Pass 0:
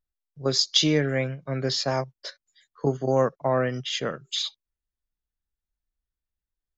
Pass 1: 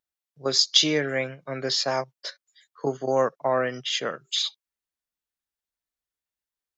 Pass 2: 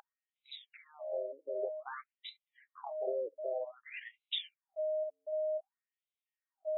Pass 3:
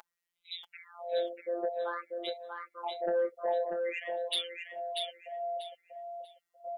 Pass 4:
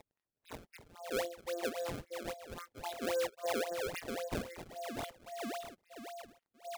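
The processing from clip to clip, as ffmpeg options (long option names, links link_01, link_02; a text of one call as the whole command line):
ffmpeg -i in.wav -af "highpass=frequency=490:poles=1,volume=2.5dB" out.wav
ffmpeg -i in.wav -af "aeval=exprs='val(0)+0.0355*sin(2*PI*620*n/s)':channel_layout=same,acompressor=threshold=-29dB:ratio=12,afftfilt=real='re*between(b*sr/1024,410*pow(2900/410,0.5+0.5*sin(2*PI*0.53*pts/sr))/1.41,410*pow(2900/410,0.5+0.5*sin(2*PI*0.53*pts/sr))*1.41)':imag='im*between(b*sr/1024,410*pow(2900/410,0.5+0.5*sin(2*PI*0.53*pts/sr))/1.41,410*pow(2900/410,0.5+0.5*sin(2*PI*0.53*pts/sr))*1.41)':win_size=1024:overlap=0.75,volume=-1dB" out.wav
ffmpeg -i in.wav -af "afftfilt=real='hypot(re,im)*cos(PI*b)':imag='0':win_size=1024:overlap=0.75,aeval=exprs='0.0596*sin(PI/2*2*val(0)/0.0596)':channel_layout=same,aecho=1:1:640|1280|1920:0.596|0.137|0.0315" out.wav
ffmpeg -i in.wav -af "acrusher=samples=27:mix=1:aa=0.000001:lfo=1:lforange=43.2:lforate=3.7,volume=-4.5dB" out.wav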